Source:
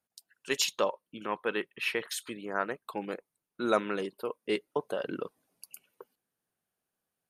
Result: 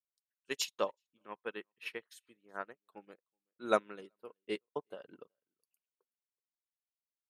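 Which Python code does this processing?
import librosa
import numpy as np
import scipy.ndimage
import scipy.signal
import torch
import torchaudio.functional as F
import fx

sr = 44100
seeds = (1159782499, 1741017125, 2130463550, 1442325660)

p1 = x + fx.echo_single(x, sr, ms=376, db=-23.5, dry=0)
y = fx.upward_expand(p1, sr, threshold_db=-44.0, expansion=2.5)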